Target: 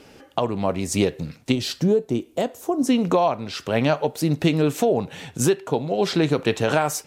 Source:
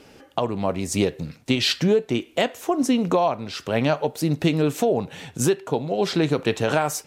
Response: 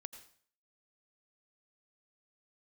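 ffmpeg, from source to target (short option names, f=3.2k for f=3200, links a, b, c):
-filter_complex "[0:a]asettb=1/sr,asplit=3[a][b][c];[a]atrim=end=1.524[d];[b]atrim=start=1.52:end=2.87,asetpts=PTS-STARTPTS,afade=t=in:d=0.004:c=qsin,afade=t=out:st=1.346:d=0.004:c=qsin,equalizer=f=2.3k:w=0.63:g=-13[e];[c]atrim=start=2.866[f];[d][e]acrossfade=d=0.004:c1=hsin:c2=qsin[g];[g][f]acrossfade=d=0.004:c1=qsin:c2=hsin,volume=1dB"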